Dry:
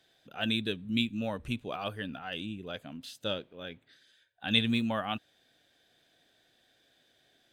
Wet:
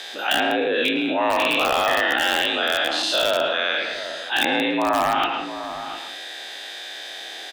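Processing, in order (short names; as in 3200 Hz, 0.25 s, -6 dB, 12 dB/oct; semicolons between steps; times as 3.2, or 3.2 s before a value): spectral dilation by 0.24 s; weighting filter A; treble ducked by the level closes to 940 Hz, closed at -22 dBFS; low shelf 160 Hz -9 dB; frequency shift +55 Hz; in parallel at -6 dB: wrapped overs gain 23 dB; on the sum: outdoor echo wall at 120 m, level -21 dB; reverb RT60 0.35 s, pre-delay 0.102 s, DRR 8.5 dB; fast leveller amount 50%; gain +7.5 dB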